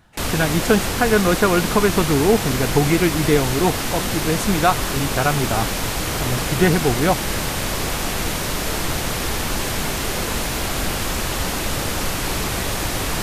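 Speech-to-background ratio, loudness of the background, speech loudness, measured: 3.0 dB, -23.0 LUFS, -20.0 LUFS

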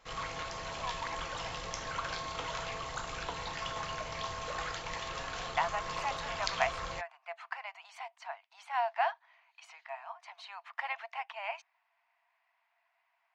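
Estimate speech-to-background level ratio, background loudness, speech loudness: -0.5 dB, -38.5 LUFS, -39.0 LUFS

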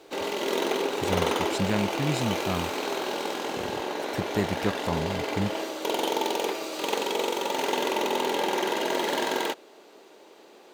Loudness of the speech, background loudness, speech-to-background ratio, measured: -31.5 LUFS, -28.5 LUFS, -3.0 dB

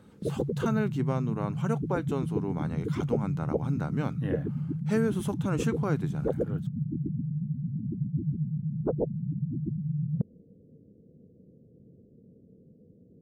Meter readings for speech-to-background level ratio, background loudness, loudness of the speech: -1.0 dB, -32.0 LUFS, -33.0 LUFS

